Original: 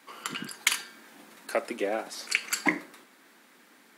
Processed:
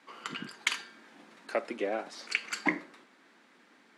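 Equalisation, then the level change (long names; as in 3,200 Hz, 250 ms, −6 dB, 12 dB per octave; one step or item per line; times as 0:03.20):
high-frequency loss of the air 86 metres
−2.5 dB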